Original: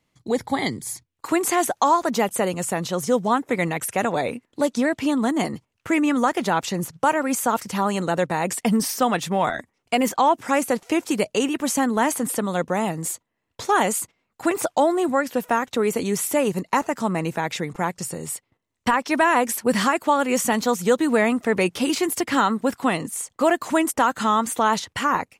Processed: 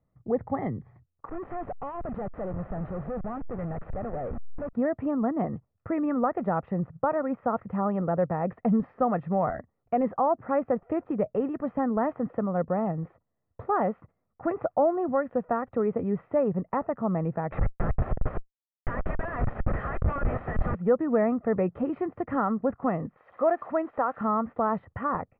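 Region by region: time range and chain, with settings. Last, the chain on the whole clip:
0:01.29–0:04.73: hold until the input has moved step −26.5 dBFS + gain into a clipping stage and back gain 27 dB
0:17.52–0:20.75: leveller curve on the samples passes 3 + high-pass filter 1,500 Hz 24 dB per octave + comparator with hysteresis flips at −25.5 dBFS
0:23.17–0:24.21: spike at every zero crossing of −19.5 dBFS + bass and treble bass −12 dB, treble 0 dB
whole clip: Bessel low-pass filter 1,000 Hz, order 6; low-shelf EQ 180 Hz +6.5 dB; comb filter 1.6 ms, depth 39%; level −4.5 dB

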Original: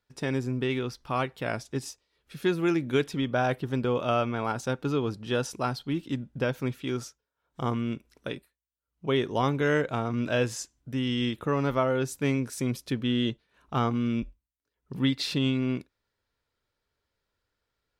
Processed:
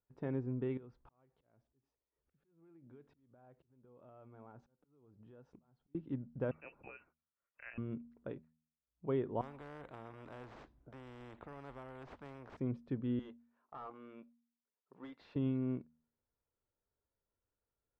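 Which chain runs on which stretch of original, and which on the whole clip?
0:00.77–0:05.95: downward compressor 20 to 1, threshold −40 dBFS + volume swells 789 ms
0:06.51–0:07.78: high-pass filter 240 Hz 6 dB per octave + voice inversion scrambler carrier 2,800 Hz
0:09.41–0:12.57: sample-rate reduction 11,000 Hz + every bin compressed towards the loudest bin 4 to 1
0:13.19–0:15.36: high-pass filter 620 Hz + hard clipping −31 dBFS
whole clip: low-pass filter 1,000 Hz 12 dB per octave; hum removal 78.76 Hz, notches 3; level −8.5 dB

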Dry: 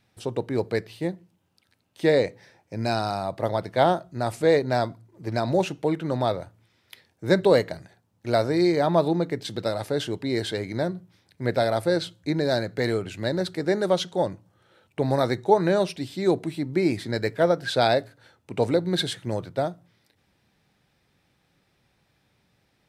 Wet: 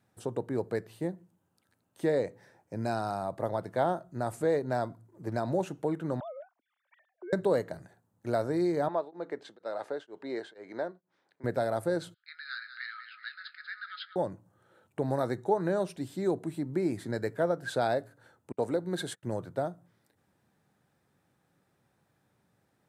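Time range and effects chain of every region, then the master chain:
0:06.20–0:07.33: three sine waves on the formant tracks + downward compressor 5 to 1, threshold −37 dBFS
0:08.88–0:11.44: band-pass filter 430–4,000 Hz + tremolo along a rectified sine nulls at 2.1 Hz
0:12.14–0:14.16: linear-phase brick-wall band-pass 1,200–5,100 Hz + double-tracking delay 19 ms −13 dB + repeating echo 192 ms, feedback 34%, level −10.5 dB
0:18.52–0:19.23: noise gate −34 dBFS, range −32 dB + low-shelf EQ 130 Hz −10 dB
whole clip: high-pass filter 95 Hz; flat-topped bell 3,400 Hz −9 dB; downward compressor 1.5 to 1, threshold −29 dBFS; level −3 dB

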